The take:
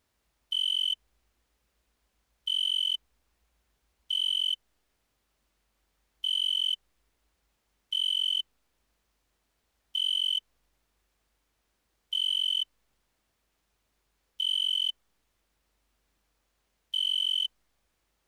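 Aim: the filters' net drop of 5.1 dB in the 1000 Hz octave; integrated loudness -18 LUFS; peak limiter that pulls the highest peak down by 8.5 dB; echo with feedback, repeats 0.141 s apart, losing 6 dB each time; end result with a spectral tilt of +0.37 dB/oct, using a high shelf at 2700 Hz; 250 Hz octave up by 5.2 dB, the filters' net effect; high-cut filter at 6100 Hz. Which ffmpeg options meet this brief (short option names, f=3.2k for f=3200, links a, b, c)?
-af "lowpass=6.1k,equalizer=f=250:t=o:g=7,equalizer=f=1k:t=o:g=-6,highshelf=f=2.7k:g=-7,alimiter=level_in=10dB:limit=-24dB:level=0:latency=1,volume=-10dB,aecho=1:1:141|282|423|564|705|846:0.501|0.251|0.125|0.0626|0.0313|0.0157,volume=21.5dB"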